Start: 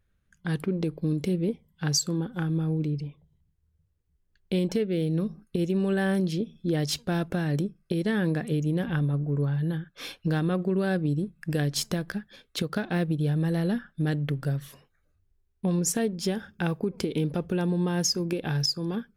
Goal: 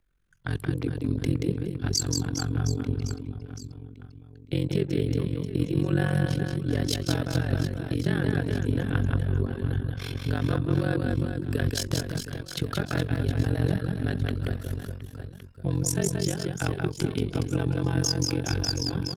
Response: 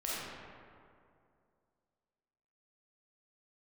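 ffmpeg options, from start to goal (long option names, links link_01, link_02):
-af "aecho=1:1:180|414|718.2|1114|1628:0.631|0.398|0.251|0.158|0.1,tremolo=f=45:d=0.919,afreqshift=-48,volume=2.5dB"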